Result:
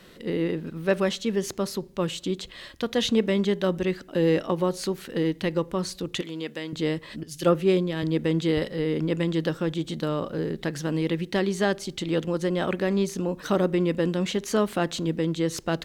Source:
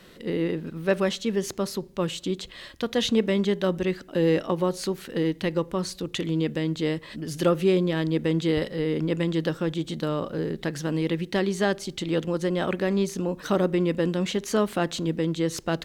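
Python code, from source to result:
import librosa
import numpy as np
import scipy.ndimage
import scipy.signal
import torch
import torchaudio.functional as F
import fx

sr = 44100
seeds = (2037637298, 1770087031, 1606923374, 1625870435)

y = fx.highpass(x, sr, hz=750.0, slope=6, at=(6.21, 6.73))
y = fx.band_widen(y, sr, depth_pct=100, at=(7.23, 8.03))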